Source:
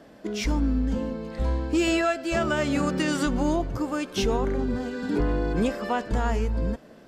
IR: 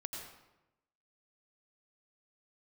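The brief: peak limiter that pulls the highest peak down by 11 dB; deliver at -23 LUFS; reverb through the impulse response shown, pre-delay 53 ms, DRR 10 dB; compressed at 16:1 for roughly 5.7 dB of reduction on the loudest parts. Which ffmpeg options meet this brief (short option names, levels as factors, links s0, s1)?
-filter_complex "[0:a]acompressor=threshold=0.0562:ratio=16,alimiter=level_in=1.58:limit=0.0631:level=0:latency=1,volume=0.631,asplit=2[s0][s1];[1:a]atrim=start_sample=2205,adelay=53[s2];[s1][s2]afir=irnorm=-1:irlink=0,volume=0.355[s3];[s0][s3]amix=inputs=2:normalize=0,volume=4.47"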